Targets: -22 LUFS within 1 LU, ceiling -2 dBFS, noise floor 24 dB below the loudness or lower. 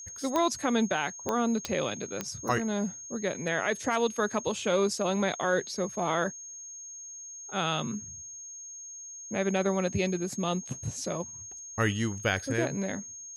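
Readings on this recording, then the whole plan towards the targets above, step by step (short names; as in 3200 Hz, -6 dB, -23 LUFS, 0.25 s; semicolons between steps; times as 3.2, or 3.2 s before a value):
clicks 4; steady tone 6500 Hz; tone level -41 dBFS; loudness -30.0 LUFS; peak -10.5 dBFS; loudness target -22.0 LUFS
-> de-click; notch 6500 Hz, Q 30; gain +8 dB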